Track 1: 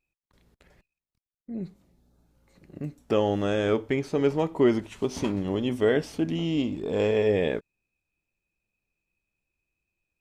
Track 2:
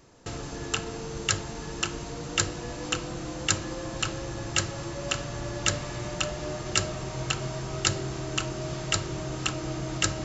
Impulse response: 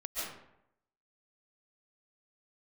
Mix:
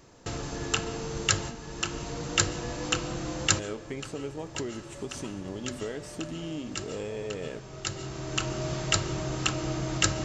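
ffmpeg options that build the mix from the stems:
-filter_complex "[0:a]equalizer=f=7900:t=o:w=0.64:g=14,acompressor=threshold=0.0562:ratio=6,volume=0.398,asplit=3[s0][s1][s2];[s0]atrim=end=1.55,asetpts=PTS-STARTPTS,afade=t=out:st=1.546:d=0.004:c=hsin[s3];[s1]atrim=start=1.55:end=3.59,asetpts=PTS-STARTPTS,volume=0[s4];[s2]atrim=start=3.59,asetpts=PTS-STARTPTS,afade=t=in:d=0.004:c=hsin[s5];[s3][s4][s5]concat=n=3:v=0:a=1,asplit=3[s6][s7][s8];[s7]volume=0.126[s9];[1:a]volume=1.12,asplit=2[s10][s11];[s11]volume=0.0708[s12];[s8]apad=whole_len=451633[s13];[s10][s13]sidechaincompress=threshold=0.00398:ratio=10:attack=16:release=897[s14];[2:a]atrim=start_sample=2205[s15];[s9][s12]amix=inputs=2:normalize=0[s16];[s16][s15]afir=irnorm=-1:irlink=0[s17];[s6][s14][s17]amix=inputs=3:normalize=0"

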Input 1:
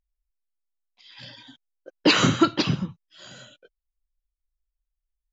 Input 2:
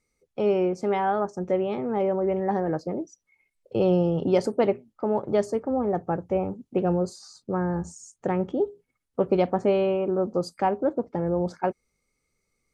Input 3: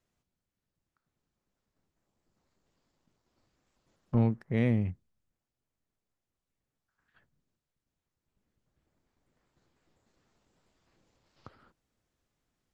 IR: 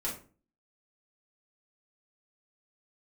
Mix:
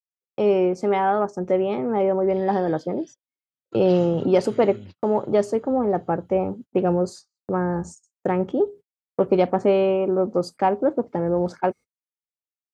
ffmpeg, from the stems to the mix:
-filter_complex "[0:a]acompressor=threshold=0.0501:ratio=4,adelay=1300,volume=0.447,asplit=2[s0][s1];[s1]volume=0.282[s2];[1:a]equalizer=f=170:t=o:w=0.38:g=-2.5,acontrast=57,volume=0.794,asplit=2[s3][s4];[2:a]acompressor=threshold=0.0178:ratio=2.5,volume=0.841[s5];[s4]apad=whole_len=292277[s6];[s0][s6]sidechaingate=range=0.0224:threshold=0.00708:ratio=16:detection=peak[s7];[s7][s5]amix=inputs=2:normalize=0,alimiter=level_in=2.11:limit=0.0631:level=0:latency=1,volume=0.473,volume=1[s8];[s2]aecho=0:1:501|1002|1503|2004|2505|3006|3507:1|0.5|0.25|0.125|0.0625|0.0312|0.0156[s9];[s3][s8][s9]amix=inputs=3:normalize=0,agate=range=0.00794:threshold=0.0141:ratio=16:detection=peak,highpass=92,adynamicequalizer=threshold=0.00794:dfrequency=3400:dqfactor=0.7:tfrequency=3400:tqfactor=0.7:attack=5:release=100:ratio=0.375:range=1.5:mode=cutabove:tftype=highshelf"

